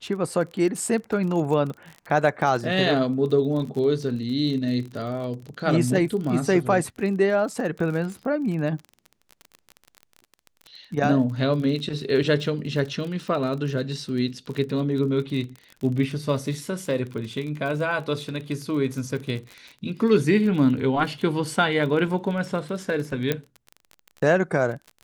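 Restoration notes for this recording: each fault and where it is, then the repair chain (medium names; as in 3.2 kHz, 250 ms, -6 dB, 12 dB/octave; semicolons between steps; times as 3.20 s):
crackle 30 per s -31 dBFS
23.32 s: pop -9 dBFS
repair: de-click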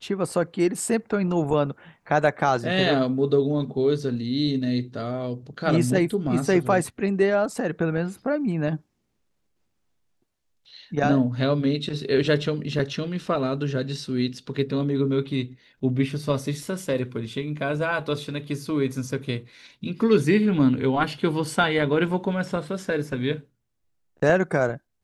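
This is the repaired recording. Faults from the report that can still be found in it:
nothing left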